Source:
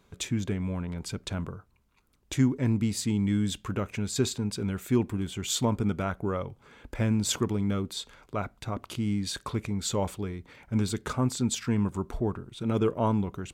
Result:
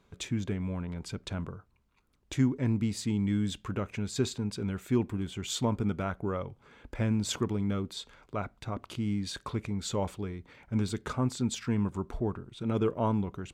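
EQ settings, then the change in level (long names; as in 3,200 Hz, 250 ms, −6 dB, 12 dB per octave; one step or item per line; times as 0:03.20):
high-shelf EQ 8,300 Hz −9.5 dB
−2.5 dB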